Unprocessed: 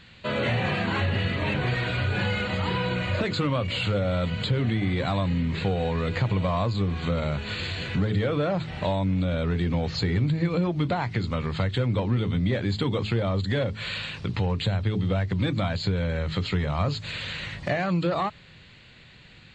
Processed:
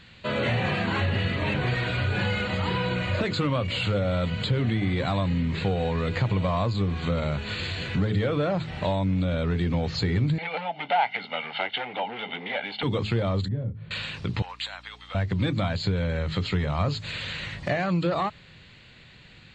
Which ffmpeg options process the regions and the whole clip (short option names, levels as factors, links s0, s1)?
-filter_complex "[0:a]asettb=1/sr,asplit=3[s0][s1][s2];[s0]atrim=end=10.384[s3];[s1]atrim=start=10.38:end=12.83,asetpts=PTS-STARTPTS,afade=t=in:d=0.004:c=qsin,afade=t=out:st=2.446:d=0.004:c=qsin,aecho=1:1:1.4:0.93,atrim=end_sample=108045,asoftclip=type=hard:threshold=0.112,highpass=f=310:w=0.5412,highpass=f=310:w=1.3066,equalizer=f=330:t=q:w=4:g=-8,equalizer=f=520:t=q:w=4:g=-6,equalizer=f=820:t=q:w=4:g=9,equalizer=f=1200:t=q:w=4:g=-4,equalizer=f=2100:t=q:w=4:g=5,equalizer=f=3000:t=q:w=4:g=9,lowpass=f=3500:w=0.5412,lowpass=f=3500:w=1.3066[s4];[s2]atrim=start=12.826[s5];[s3][s4]acrossfade=d=0.004:c1=hsin:c2=qsin[s6];[s6][s5]acrossfade=d=0.004:c1=qsin:c2=hsin,asettb=1/sr,asplit=3[s7][s8][s9];[s7]atrim=end=13.484[s10];[s8]atrim=start=13.48:end=13.91,asetpts=PTS-STARTPTS,afade=t=in:d=0.004:c=qsin,afade=t=out:st=0.426:d=0.004:c=qsin,bandpass=f=130:t=q:w=1.3,asplit=2[s11][s12];[s12]adelay=26,volume=0.447[s13];[s11][s13]amix=inputs=2:normalize=0,atrim=end_sample=18963[s14];[s9]atrim=start=13.906[s15];[s10][s14]acrossfade=d=0.004:c1=hsin:c2=qsin[s16];[s16][s15]acrossfade=d=0.004:c1=qsin:c2=hsin,asettb=1/sr,asplit=3[s17][s18][s19];[s17]atrim=end=14.424[s20];[s18]atrim=start=14.42:end=15.15,asetpts=PTS-STARTPTS,afade=t=in:d=0.004:c=qsin,afade=t=out:st=0.726:d=0.004:c=qsin,highpass=f=890:w=0.5412,highpass=f=890:w=1.3066,aeval=exprs='val(0)+0.00251*(sin(2*PI*60*n/s)+sin(2*PI*2*60*n/s)/2+sin(2*PI*3*60*n/s)/3+sin(2*PI*4*60*n/s)/4+sin(2*PI*5*60*n/s)/5)':c=same[s21];[s19]atrim=start=15.146[s22];[s20][s21]acrossfade=d=0.004:c1=hsin:c2=qsin[s23];[s23][s22]acrossfade=d=0.004:c1=qsin:c2=hsin"